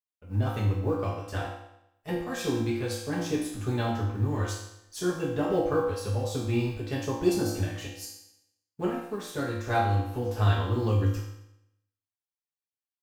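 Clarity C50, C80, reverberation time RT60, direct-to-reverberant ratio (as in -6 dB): 2.5 dB, 5.5 dB, 0.80 s, -7.0 dB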